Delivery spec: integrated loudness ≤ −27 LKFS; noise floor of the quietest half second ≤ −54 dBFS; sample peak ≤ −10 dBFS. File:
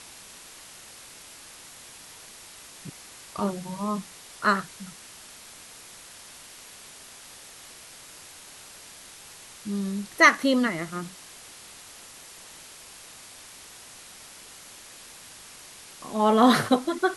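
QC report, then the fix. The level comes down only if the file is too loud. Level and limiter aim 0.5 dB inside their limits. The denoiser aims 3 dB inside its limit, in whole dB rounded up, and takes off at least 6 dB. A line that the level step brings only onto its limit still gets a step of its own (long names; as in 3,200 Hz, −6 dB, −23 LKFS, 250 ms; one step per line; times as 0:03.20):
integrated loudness −24.0 LKFS: out of spec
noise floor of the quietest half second −47 dBFS: out of spec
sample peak −4.5 dBFS: out of spec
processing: broadband denoise 7 dB, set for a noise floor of −47 dBFS
level −3.5 dB
brickwall limiter −10.5 dBFS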